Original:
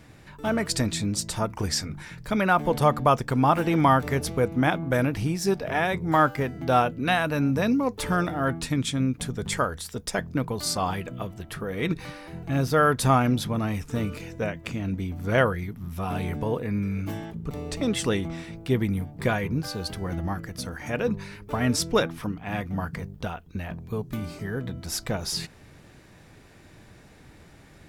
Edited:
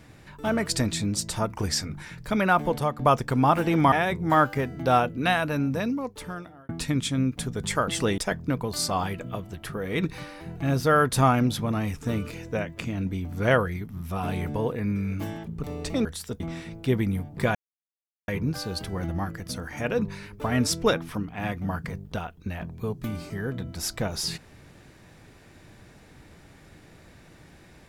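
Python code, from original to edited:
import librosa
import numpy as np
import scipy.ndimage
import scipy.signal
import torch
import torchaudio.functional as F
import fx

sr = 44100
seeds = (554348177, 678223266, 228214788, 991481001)

y = fx.edit(x, sr, fx.fade_out_to(start_s=2.61, length_s=0.38, floor_db=-12.0),
    fx.cut(start_s=3.92, length_s=1.82),
    fx.fade_out_span(start_s=7.14, length_s=1.37),
    fx.swap(start_s=9.7, length_s=0.35, other_s=17.92, other_length_s=0.3),
    fx.insert_silence(at_s=19.37, length_s=0.73), tone=tone)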